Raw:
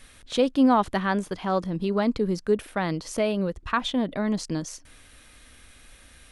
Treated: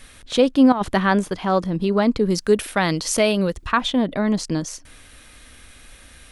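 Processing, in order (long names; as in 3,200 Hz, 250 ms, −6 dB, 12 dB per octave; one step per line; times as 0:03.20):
0:00.72–0:01.30: compressor whose output falls as the input rises −23 dBFS, ratio −0.5
0:02.30–0:03.67: high-shelf EQ 2,200 Hz +9.5 dB
level +5.5 dB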